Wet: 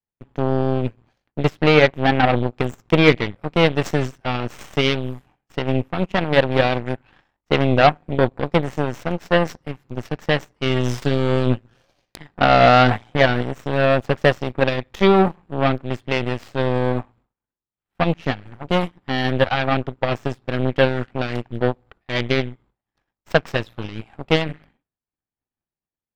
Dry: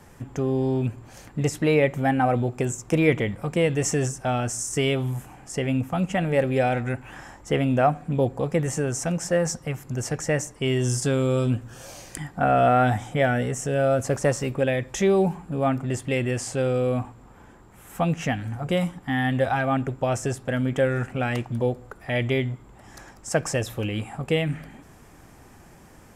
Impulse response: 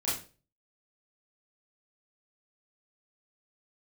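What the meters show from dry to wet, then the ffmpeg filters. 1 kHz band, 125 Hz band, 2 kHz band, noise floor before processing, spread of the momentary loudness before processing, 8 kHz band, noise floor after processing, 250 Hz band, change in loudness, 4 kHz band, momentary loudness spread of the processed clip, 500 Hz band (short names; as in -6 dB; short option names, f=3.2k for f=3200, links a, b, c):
+5.5 dB, +2.5 dB, +7.0 dB, -50 dBFS, 10 LU, under -10 dB, under -85 dBFS, +3.5 dB, +4.5 dB, +9.5 dB, 13 LU, +4.0 dB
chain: -af "aeval=exprs='0.422*(cos(1*acos(clip(val(0)/0.422,-1,1)))-cos(1*PI/2))+0.00531*(cos(3*acos(clip(val(0)/0.422,-1,1)))-cos(3*PI/2))+0.0531*(cos(7*acos(clip(val(0)/0.422,-1,1)))-cos(7*PI/2))+0.0211*(cos(8*acos(clip(val(0)/0.422,-1,1)))-cos(8*PI/2))':c=same,agate=range=-33dB:threshold=-52dB:ratio=3:detection=peak,highshelf=f=5.6k:t=q:w=1.5:g=-12.5,volume=6.5dB"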